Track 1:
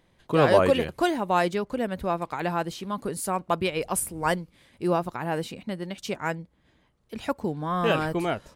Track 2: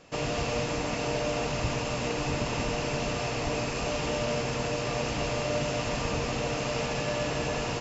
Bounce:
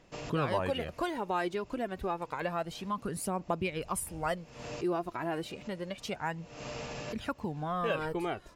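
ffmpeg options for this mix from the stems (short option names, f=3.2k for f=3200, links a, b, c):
-filter_complex "[0:a]aphaser=in_gain=1:out_gain=1:delay=3.1:decay=0.51:speed=0.29:type=triangular,bass=f=250:g=0,treble=f=4k:g=-4,acompressor=threshold=-29dB:ratio=2,volume=-3.5dB,asplit=2[a][b];[1:a]volume=-10dB[c];[b]apad=whole_len=348616[d];[c][d]sidechaincompress=threshold=-54dB:ratio=16:attack=8.6:release=195[e];[a][e]amix=inputs=2:normalize=0"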